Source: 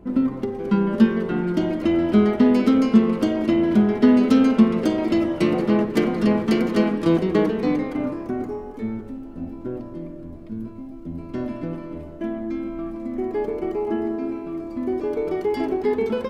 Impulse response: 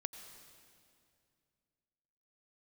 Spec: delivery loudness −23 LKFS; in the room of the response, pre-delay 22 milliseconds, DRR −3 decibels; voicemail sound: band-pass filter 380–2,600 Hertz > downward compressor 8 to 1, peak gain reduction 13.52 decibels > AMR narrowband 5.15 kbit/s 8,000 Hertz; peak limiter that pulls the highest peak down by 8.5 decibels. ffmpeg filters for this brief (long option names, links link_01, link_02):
-filter_complex "[0:a]alimiter=limit=-12.5dB:level=0:latency=1,asplit=2[link_01][link_02];[1:a]atrim=start_sample=2205,adelay=22[link_03];[link_02][link_03]afir=irnorm=-1:irlink=0,volume=5dB[link_04];[link_01][link_04]amix=inputs=2:normalize=0,highpass=380,lowpass=2600,acompressor=threshold=-29dB:ratio=8,volume=11.5dB" -ar 8000 -c:a libopencore_amrnb -b:a 5150